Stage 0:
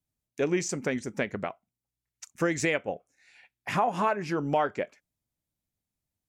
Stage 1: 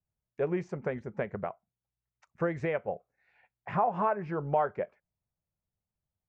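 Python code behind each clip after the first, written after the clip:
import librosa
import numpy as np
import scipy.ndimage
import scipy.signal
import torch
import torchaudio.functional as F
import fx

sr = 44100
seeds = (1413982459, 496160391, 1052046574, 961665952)

y = scipy.signal.sosfilt(scipy.signal.butter(2, 1200.0, 'lowpass', fs=sr, output='sos'), x)
y = fx.peak_eq(y, sr, hz=280.0, db=-14.0, octaves=0.46)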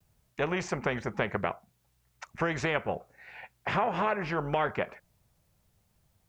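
y = fx.vibrato(x, sr, rate_hz=0.69, depth_cents=35.0)
y = fx.spectral_comp(y, sr, ratio=2.0)
y = F.gain(torch.from_numpy(y), 2.0).numpy()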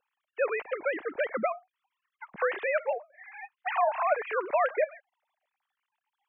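y = fx.sine_speech(x, sr)
y = F.gain(torch.from_numpy(y), 1.5).numpy()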